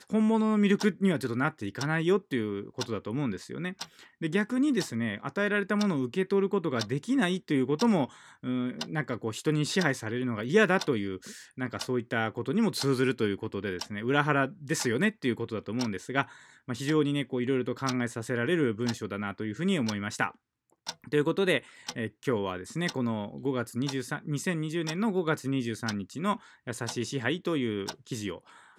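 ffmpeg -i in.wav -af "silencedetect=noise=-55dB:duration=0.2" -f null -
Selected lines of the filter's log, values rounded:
silence_start: 20.35
silence_end: 20.70 | silence_duration: 0.34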